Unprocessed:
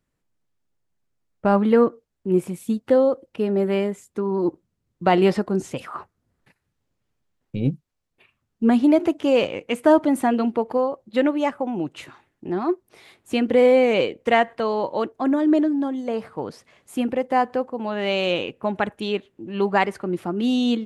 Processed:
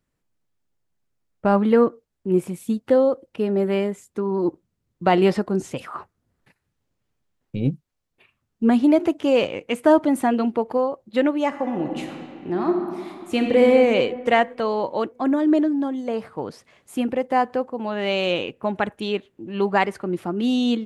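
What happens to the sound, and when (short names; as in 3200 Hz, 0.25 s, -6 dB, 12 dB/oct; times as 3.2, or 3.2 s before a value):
11.47–13.67 reverb throw, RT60 2.3 s, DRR 3 dB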